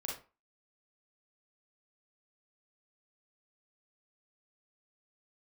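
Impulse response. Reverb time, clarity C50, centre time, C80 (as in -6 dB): 0.35 s, 3.0 dB, 38 ms, 11.5 dB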